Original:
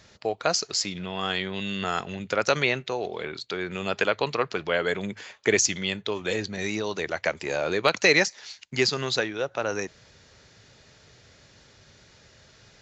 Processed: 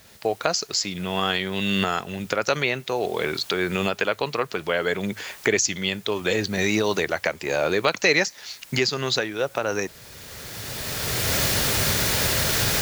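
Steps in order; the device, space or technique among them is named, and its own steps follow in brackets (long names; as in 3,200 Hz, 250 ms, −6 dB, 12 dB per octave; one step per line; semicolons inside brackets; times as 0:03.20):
cheap recorder with automatic gain (white noise bed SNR 27 dB; camcorder AGC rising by 17 dB per second)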